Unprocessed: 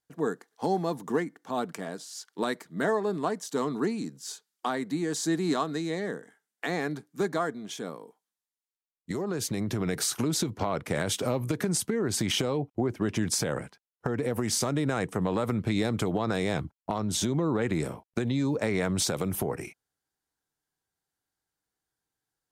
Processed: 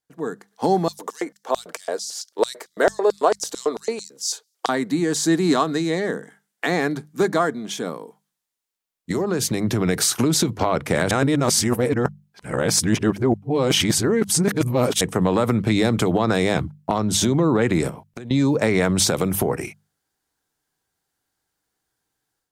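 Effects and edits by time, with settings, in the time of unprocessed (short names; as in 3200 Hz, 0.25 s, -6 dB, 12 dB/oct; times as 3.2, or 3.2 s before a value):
0.88–4.69 LFO high-pass square 4.5 Hz 490–5300 Hz
11.11–15.01 reverse
17.89–18.31 compressor, threshold -41 dBFS
whole clip: notches 50/100/150/200 Hz; AGC gain up to 9 dB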